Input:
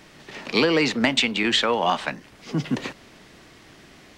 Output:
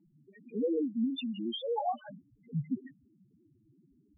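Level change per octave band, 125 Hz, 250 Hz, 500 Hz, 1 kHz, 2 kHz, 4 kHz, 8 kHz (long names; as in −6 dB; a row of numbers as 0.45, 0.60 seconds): −9.0 dB, −8.5 dB, −10.5 dB, −11.5 dB, −32.0 dB, −20.0 dB, below −40 dB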